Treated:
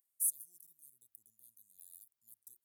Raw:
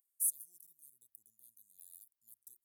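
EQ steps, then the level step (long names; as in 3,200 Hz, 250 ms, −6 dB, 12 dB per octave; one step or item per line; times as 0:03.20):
high-pass filter 71 Hz
low-shelf EQ 120 Hz +7 dB
0.0 dB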